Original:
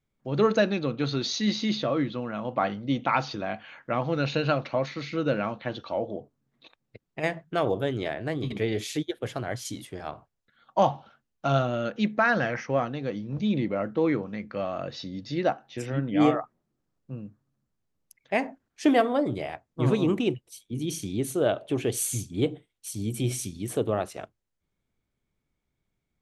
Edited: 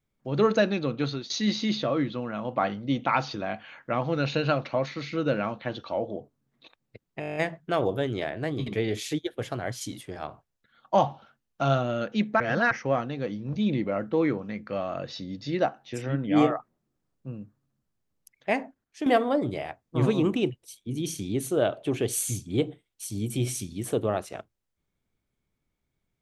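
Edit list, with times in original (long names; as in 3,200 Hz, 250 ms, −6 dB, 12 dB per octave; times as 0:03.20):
0:01.04–0:01.30: fade out, to −19 dB
0:07.20: stutter 0.02 s, 9 plays
0:12.24–0:12.55: reverse
0:18.35–0:18.90: fade out, to −12 dB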